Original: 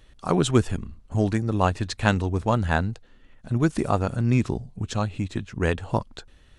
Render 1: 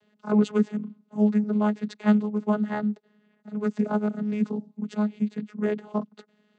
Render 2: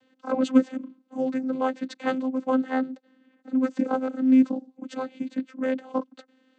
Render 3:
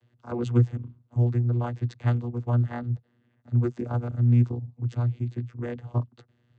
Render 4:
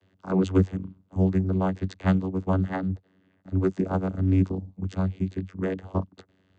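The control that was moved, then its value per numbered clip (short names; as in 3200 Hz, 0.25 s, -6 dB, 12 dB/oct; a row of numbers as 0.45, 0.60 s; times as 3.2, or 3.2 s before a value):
vocoder, frequency: 210, 260, 120, 94 Hz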